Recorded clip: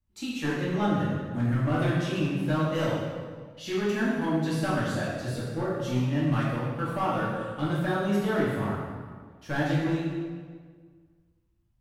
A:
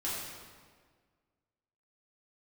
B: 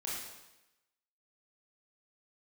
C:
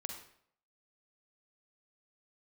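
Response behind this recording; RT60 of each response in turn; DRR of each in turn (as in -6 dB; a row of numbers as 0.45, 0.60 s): A; 1.7, 0.95, 0.65 s; -8.5, -6.5, 3.5 dB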